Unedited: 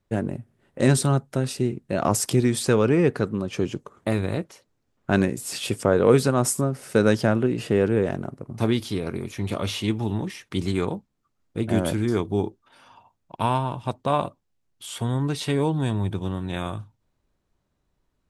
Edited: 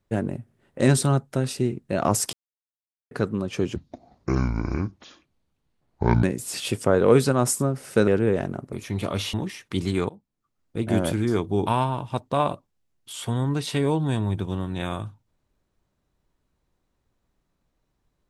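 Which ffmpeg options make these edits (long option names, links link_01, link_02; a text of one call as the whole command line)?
ffmpeg -i in.wav -filter_complex "[0:a]asplit=10[link_01][link_02][link_03][link_04][link_05][link_06][link_07][link_08][link_09][link_10];[link_01]atrim=end=2.33,asetpts=PTS-STARTPTS,afade=type=out:start_time=2.326:duration=0.004:curve=hsin[link_11];[link_02]atrim=start=2.33:end=3.11,asetpts=PTS-STARTPTS,volume=0[link_12];[link_03]atrim=start=3.11:end=3.764,asetpts=PTS-STARTPTS,afade=type=in:duration=0.004:curve=hsin[link_13];[link_04]atrim=start=3.76:end=5.22,asetpts=PTS-STARTPTS,asetrate=26019,aresample=44100[link_14];[link_05]atrim=start=5.216:end=7.062[link_15];[link_06]atrim=start=7.768:end=8.422[link_16];[link_07]atrim=start=9.208:end=9.822[link_17];[link_08]atrim=start=10.138:end=10.9,asetpts=PTS-STARTPTS,afade=type=out:start_time=0.758:duration=0.004:curve=hsin:silence=0.1[link_18];[link_09]atrim=start=10.9:end=12.472,asetpts=PTS-STARTPTS,afade=type=in:duration=0.97:curve=qsin:silence=0.1[link_19];[link_10]atrim=start=13.398[link_20];[link_11][link_12][link_13]concat=n=3:v=0:a=1[link_21];[link_21][link_14]acrossfade=duration=0.004:curve1=hsin:curve2=hsin[link_22];[link_22][link_15]acrossfade=duration=0.004:curve1=hsin:curve2=hsin[link_23];[link_23][link_16]acrossfade=duration=0.004:curve1=hsin:curve2=hsin[link_24];[link_24][link_17]acrossfade=duration=0.004:curve1=hsin:curve2=hsin[link_25];[link_18][link_19]concat=n=2:v=0:a=1[link_26];[link_25][link_26]acrossfade=duration=0.004:curve1=hsin:curve2=hsin[link_27];[link_27][link_20]acrossfade=duration=0.004:curve1=hsin:curve2=hsin" out.wav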